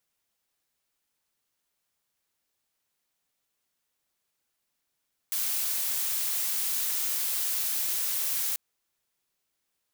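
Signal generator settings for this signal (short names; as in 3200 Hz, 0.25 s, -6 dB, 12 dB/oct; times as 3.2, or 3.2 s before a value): noise blue, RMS -29 dBFS 3.24 s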